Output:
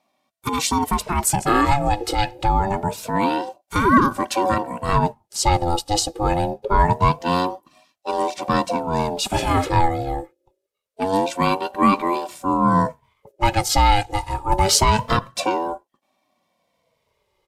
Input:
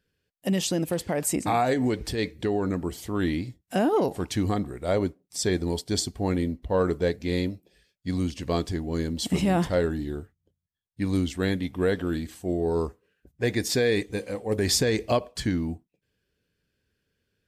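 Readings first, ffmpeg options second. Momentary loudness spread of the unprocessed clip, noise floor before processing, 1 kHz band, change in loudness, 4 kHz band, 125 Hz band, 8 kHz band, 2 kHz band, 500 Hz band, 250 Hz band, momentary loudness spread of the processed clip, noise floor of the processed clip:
8 LU, -79 dBFS, +15.5 dB, +6.5 dB, +6.5 dB, +5.0 dB, +7.0 dB, +7.0 dB, +2.0 dB, +3.0 dB, 9 LU, -74 dBFS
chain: -af "aresample=32000,aresample=44100,aecho=1:1:2.4:0.91,aeval=exprs='val(0)*sin(2*PI*550*n/s+550*0.25/0.25*sin(2*PI*0.25*n/s))':c=same,volume=7dB"

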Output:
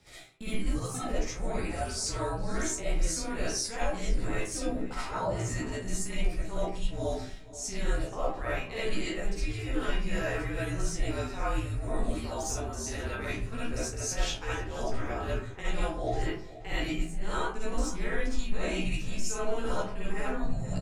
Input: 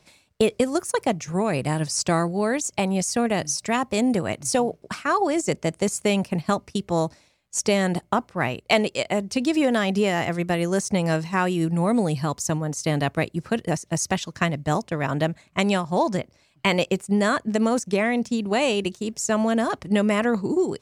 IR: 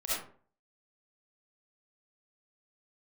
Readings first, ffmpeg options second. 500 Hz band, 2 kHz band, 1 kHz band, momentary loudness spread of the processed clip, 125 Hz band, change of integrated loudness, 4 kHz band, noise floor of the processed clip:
-11.5 dB, -9.0 dB, -11.0 dB, 4 LU, -8.5 dB, -10.0 dB, -8.5 dB, -41 dBFS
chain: -filter_complex "[0:a]asplit=2[a][b];[b]adelay=15,volume=-3dB[c];[a][c]amix=inputs=2:normalize=0,afreqshift=-220,areverse,acompressor=threshold=-33dB:ratio=12,areverse,asplit=2[d][e];[e]adelay=481,lowpass=f=4.8k:p=1,volume=-16dB,asplit=2[f][g];[g]adelay=481,lowpass=f=4.8k:p=1,volume=0.36,asplit=2[h][i];[i]adelay=481,lowpass=f=4.8k:p=1,volume=0.36[j];[d][f][h][j]amix=inputs=4:normalize=0[k];[1:a]atrim=start_sample=2205[l];[k][l]afir=irnorm=-1:irlink=0"

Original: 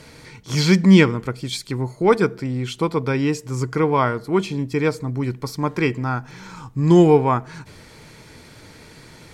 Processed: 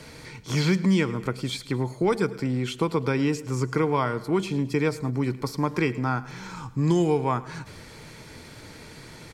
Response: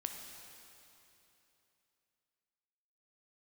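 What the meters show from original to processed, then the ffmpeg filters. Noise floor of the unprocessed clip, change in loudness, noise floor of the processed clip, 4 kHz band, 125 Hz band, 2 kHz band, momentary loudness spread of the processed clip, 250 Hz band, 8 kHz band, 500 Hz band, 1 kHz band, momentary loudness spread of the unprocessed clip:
-46 dBFS, -6.5 dB, -45 dBFS, -6.0 dB, -5.5 dB, -5.5 dB, 21 LU, -6.5 dB, -5.0 dB, -6.5 dB, -6.0 dB, 14 LU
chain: -filter_complex "[0:a]acrossover=split=140|3300|6600[a][b][c][d];[a]acompressor=threshold=-36dB:ratio=4[e];[b]acompressor=threshold=-21dB:ratio=4[f];[c]acompressor=threshold=-44dB:ratio=4[g];[d]acompressor=threshold=-44dB:ratio=4[h];[e][f][g][h]amix=inputs=4:normalize=0,aecho=1:1:108|216|324|432:0.112|0.055|0.0269|0.0132"

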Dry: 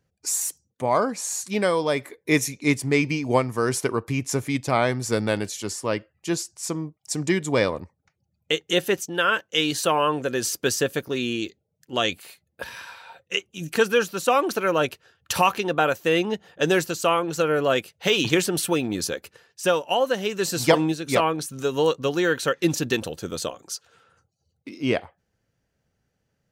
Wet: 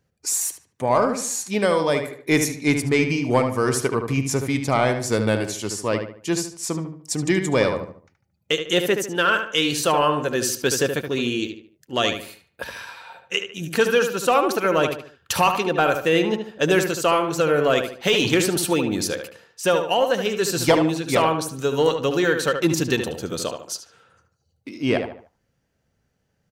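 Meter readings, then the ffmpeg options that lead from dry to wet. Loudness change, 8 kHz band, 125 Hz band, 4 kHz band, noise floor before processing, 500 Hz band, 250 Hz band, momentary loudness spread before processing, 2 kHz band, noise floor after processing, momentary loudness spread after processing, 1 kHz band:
+2.5 dB, +2.0 dB, +3.0 dB, +2.0 dB, -76 dBFS, +2.5 dB, +2.5 dB, 9 LU, +2.0 dB, -71 dBFS, 9 LU, +2.0 dB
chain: -filter_complex "[0:a]acontrast=70,asplit=2[a][b];[b]adelay=74,lowpass=f=2.9k:p=1,volume=-6.5dB,asplit=2[c][d];[d]adelay=74,lowpass=f=2.9k:p=1,volume=0.38,asplit=2[e][f];[f]adelay=74,lowpass=f=2.9k:p=1,volume=0.38,asplit=2[g][h];[h]adelay=74,lowpass=f=2.9k:p=1,volume=0.38[i];[a][c][e][g][i]amix=inputs=5:normalize=0,volume=-4.5dB"

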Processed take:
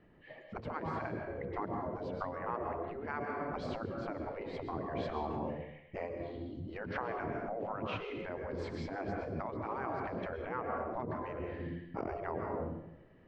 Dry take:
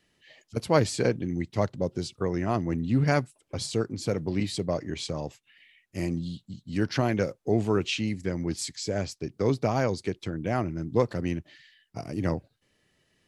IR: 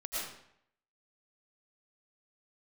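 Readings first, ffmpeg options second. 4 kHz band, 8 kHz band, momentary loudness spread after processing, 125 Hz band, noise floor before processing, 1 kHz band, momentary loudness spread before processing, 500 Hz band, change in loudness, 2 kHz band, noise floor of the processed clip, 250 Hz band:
-18.0 dB, under -30 dB, 5 LU, -15.0 dB, -72 dBFS, -3.5 dB, 10 LU, -9.5 dB, -11.0 dB, -7.5 dB, -57 dBFS, -12.5 dB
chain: -filter_complex "[0:a]lowpass=1.2k,asplit=2[a][b];[1:a]atrim=start_sample=2205,asetrate=38367,aresample=44100[c];[b][c]afir=irnorm=-1:irlink=0,volume=-6dB[d];[a][d]amix=inputs=2:normalize=0,acompressor=threshold=-29dB:ratio=20,afftfilt=real='re*lt(hypot(re,im),0.0562)':imag='im*lt(hypot(re,im),0.0562)':win_size=1024:overlap=0.75,aemphasis=mode=reproduction:type=50fm,volume=7dB"

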